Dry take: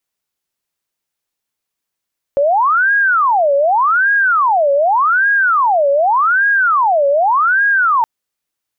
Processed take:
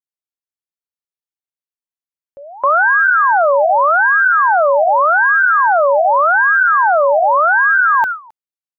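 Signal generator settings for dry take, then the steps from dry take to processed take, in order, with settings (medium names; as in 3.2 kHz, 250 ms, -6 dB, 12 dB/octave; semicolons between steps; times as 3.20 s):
siren wail 557–1640 Hz 0.85 per s sine -9.5 dBFS 5.67 s
on a send: delay 265 ms -6 dB; on the sum: gate with hold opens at -7 dBFS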